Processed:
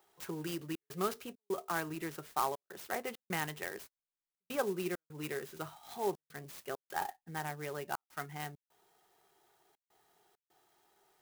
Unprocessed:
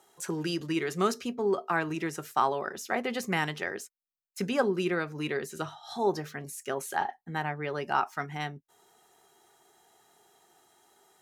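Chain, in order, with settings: bell 240 Hz -7.5 dB 0.32 oct; step gate "xxxxx.xxx.xx" 100 bpm -60 dB; clock jitter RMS 0.044 ms; gain -7 dB

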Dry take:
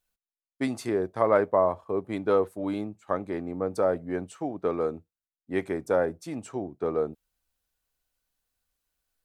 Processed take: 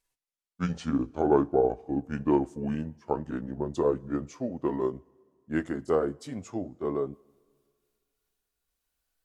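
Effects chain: gliding pitch shift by -7.5 st ending unshifted; two-slope reverb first 0.21 s, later 2 s, from -19 dB, DRR 17.5 dB

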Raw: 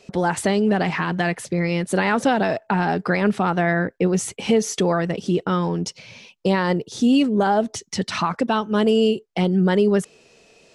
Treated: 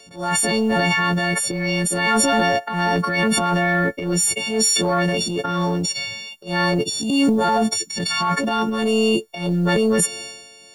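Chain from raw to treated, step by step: frequency quantiser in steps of 4 st; de-esser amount 30%; transient shaper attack -10 dB, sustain +10 dB; companded quantiser 8-bit; transient shaper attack -9 dB, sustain +4 dB

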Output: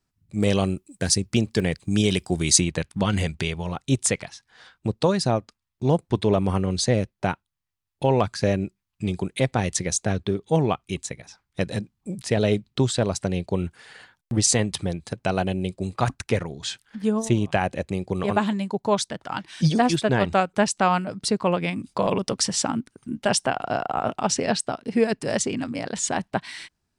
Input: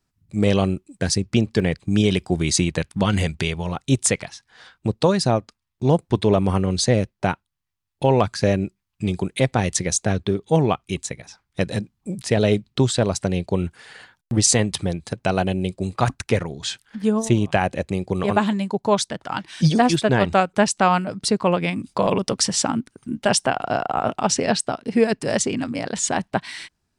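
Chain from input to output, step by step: 0.39–2.59 high shelf 7400 Hz -> 5000 Hz +11.5 dB; gain -3 dB

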